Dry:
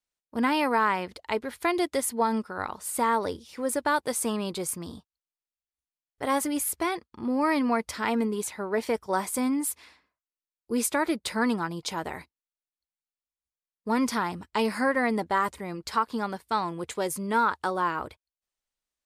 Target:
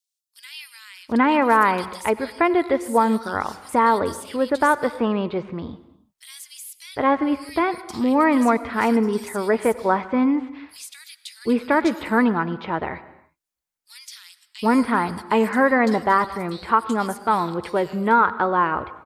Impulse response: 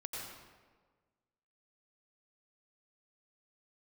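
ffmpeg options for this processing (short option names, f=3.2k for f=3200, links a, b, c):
-filter_complex "[0:a]acrossover=split=3200[a][b];[b]acompressor=threshold=-45dB:ratio=4:attack=1:release=60[c];[a][c]amix=inputs=2:normalize=0,acrossover=split=3300[d][e];[d]adelay=760[f];[f][e]amix=inputs=2:normalize=0,asplit=2[g][h];[1:a]atrim=start_sample=2205,afade=t=out:st=0.41:d=0.01,atrim=end_sample=18522[i];[h][i]afir=irnorm=-1:irlink=0,volume=-12.5dB[j];[g][j]amix=inputs=2:normalize=0,volume=6.5dB"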